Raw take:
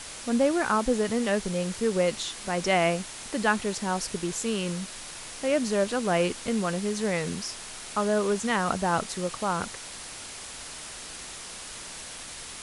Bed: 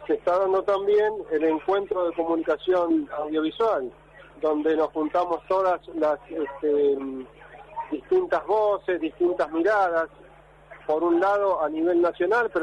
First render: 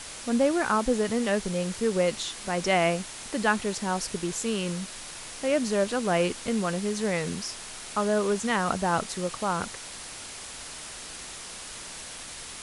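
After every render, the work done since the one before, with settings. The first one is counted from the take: no audible change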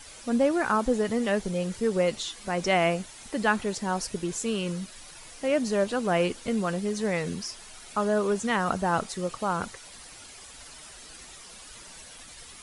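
noise reduction 10 dB, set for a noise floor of -41 dBFS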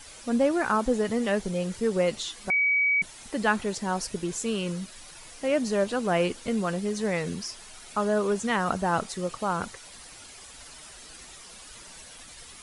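2.50–3.02 s: bleep 2.27 kHz -20 dBFS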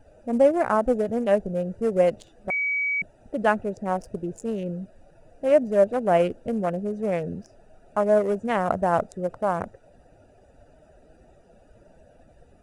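local Wiener filter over 41 samples; fifteen-band graphic EQ 100 Hz +4 dB, 630 Hz +11 dB, 4 kHz -7 dB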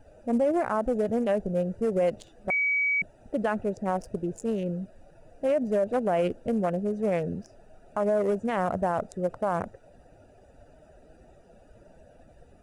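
peak limiter -17.5 dBFS, peak gain reduction 10 dB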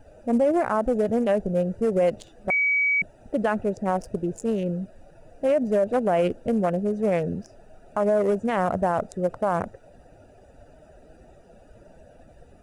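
trim +3.5 dB

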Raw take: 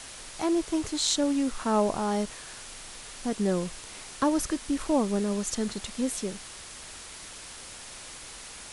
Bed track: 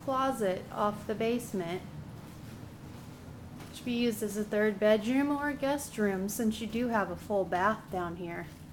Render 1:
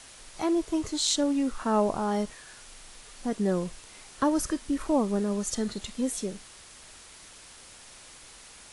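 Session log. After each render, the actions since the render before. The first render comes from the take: noise print and reduce 6 dB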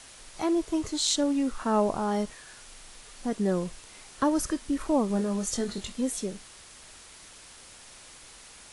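5.08–5.92 s: doubling 21 ms -6.5 dB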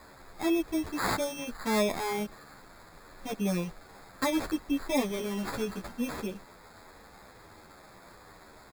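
sample-and-hold 15×; endless flanger 10.5 ms -1.3 Hz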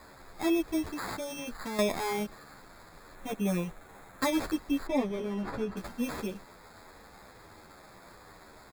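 0.82–1.79 s: compression, threshold -33 dBFS; 3.15–4.21 s: peaking EQ 4.8 kHz -12 dB 0.37 oct; 4.87–5.77 s: low-pass 1.4 kHz 6 dB/octave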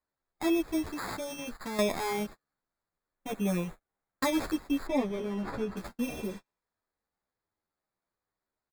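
6.09–6.87 s: spectral replace 810–9000 Hz both; gate -40 dBFS, range -38 dB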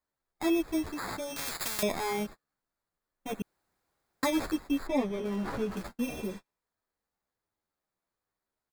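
1.36–1.83 s: spectrum-flattening compressor 10:1; 3.42–4.23 s: room tone; 5.25–5.83 s: jump at every zero crossing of -42.5 dBFS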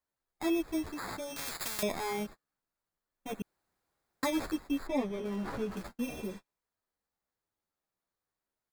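trim -3 dB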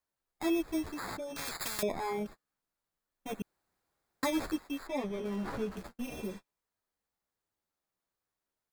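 1.17–2.26 s: resonances exaggerated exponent 1.5; 4.58–5.04 s: bass shelf 330 Hz -10 dB; 5.69–6.12 s: AM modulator 250 Hz, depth 55%

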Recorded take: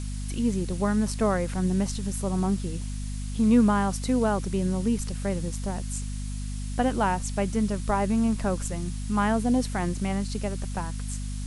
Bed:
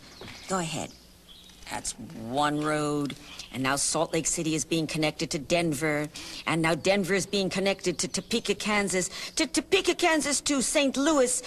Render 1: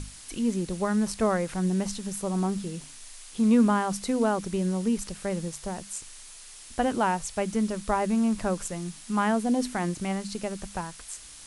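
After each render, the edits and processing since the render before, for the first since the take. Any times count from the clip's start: hum notches 50/100/150/200/250 Hz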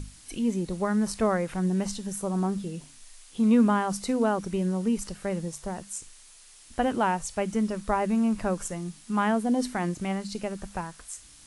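noise print and reduce 6 dB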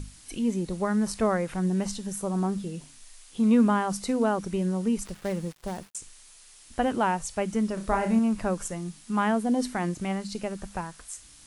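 5.05–5.95 s: dead-time distortion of 0.12 ms; 7.74–8.19 s: flutter echo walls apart 5.3 m, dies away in 0.32 s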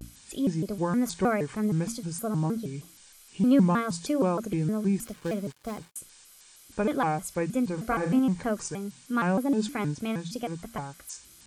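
comb of notches 790 Hz; vibrato with a chosen wave square 3.2 Hz, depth 250 cents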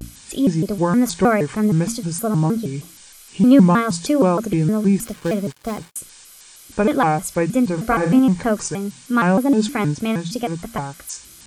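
trim +9.5 dB

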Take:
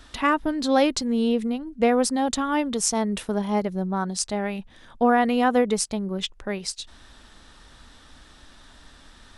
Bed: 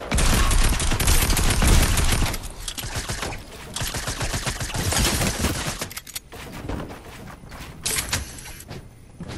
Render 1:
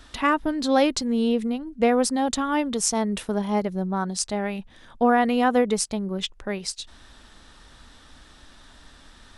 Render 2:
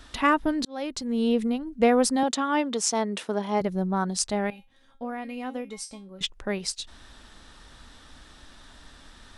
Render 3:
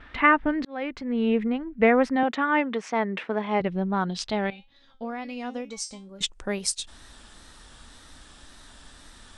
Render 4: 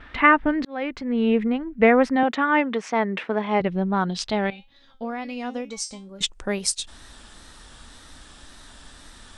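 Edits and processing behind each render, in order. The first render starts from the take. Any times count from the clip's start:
no audible change
0.65–1.38 s: fade in; 2.23–3.61 s: band-pass 260–7800 Hz; 4.50–6.21 s: feedback comb 270 Hz, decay 0.24 s, mix 90%
wow and flutter 70 cents; low-pass sweep 2.1 kHz -> 9.3 kHz, 3.12–6.60 s
trim +3 dB

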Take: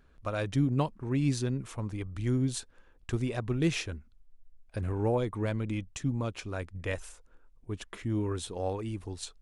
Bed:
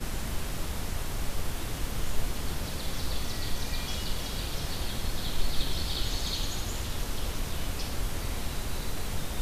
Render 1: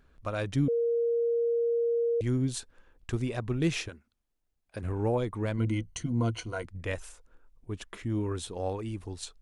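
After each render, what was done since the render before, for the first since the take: 0.68–2.21 s: bleep 468 Hz -24 dBFS; 3.88–4.83 s: high-pass 430 Hz -> 190 Hz 6 dB/octave; 5.57–6.66 s: rippled EQ curve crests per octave 1.9, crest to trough 14 dB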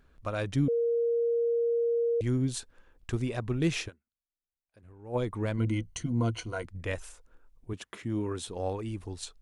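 3.88–5.16 s: dip -20.5 dB, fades 0.32 s exponential; 7.73–8.48 s: high-pass 110 Hz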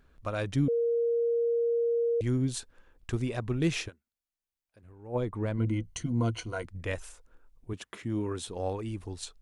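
5.07–5.84 s: treble shelf 2.1 kHz -8 dB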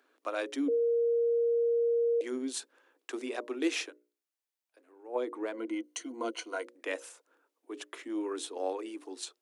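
steep high-pass 270 Hz 72 dB/octave; hum notches 60/120/180/240/300/360/420/480/540/600 Hz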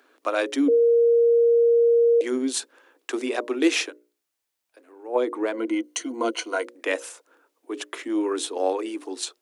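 trim +10 dB

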